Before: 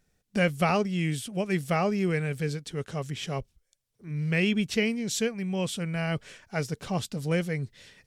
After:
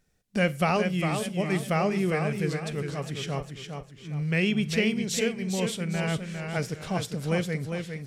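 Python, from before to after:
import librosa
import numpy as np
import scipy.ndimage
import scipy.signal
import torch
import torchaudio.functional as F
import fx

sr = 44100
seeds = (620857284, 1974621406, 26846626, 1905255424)

y = fx.rev_schroeder(x, sr, rt60_s=0.31, comb_ms=33, drr_db=18.0)
y = fx.echo_warbled(y, sr, ms=406, feedback_pct=37, rate_hz=2.8, cents=74, wet_db=-6.0)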